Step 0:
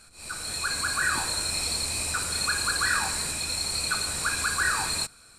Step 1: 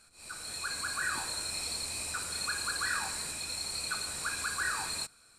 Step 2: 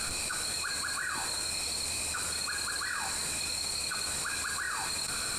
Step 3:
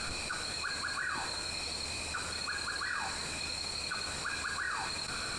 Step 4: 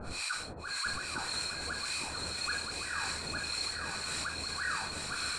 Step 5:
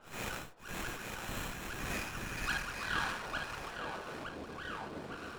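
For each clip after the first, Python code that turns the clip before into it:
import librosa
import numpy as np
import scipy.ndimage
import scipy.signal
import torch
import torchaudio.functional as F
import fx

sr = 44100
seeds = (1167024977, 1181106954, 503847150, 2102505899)

y1 = fx.low_shelf(x, sr, hz=160.0, db=-5.5)
y1 = y1 * 10.0 ** (-7.5 / 20.0)
y2 = fx.env_flatten(y1, sr, amount_pct=100)
y2 = y2 * 10.0 ** (-3.5 / 20.0)
y3 = fx.air_absorb(y2, sr, metres=83.0)
y4 = fx.harmonic_tremolo(y3, sr, hz=1.8, depth_pct=100, crossover_hz=950.0)
y4 = y4 + 10.0 ** (-3.5 / 20.0) * np.pad(y4, (int(858 * sr / 1000.0), 0))[:len(y4)]
y4 = y4 * 10.0 ** (3.5 / 20.0)
y5 = fx.filter_sweep_bandpass(y4, sr, from_hz=6600.0, to_hz=350.0, start_s=1.52, end_s=4.45, q=0.87)
y5 = fx.running_max(y5, sr, window=9)
y5 = y5 * 10.0 ** (4.5 / 20.0)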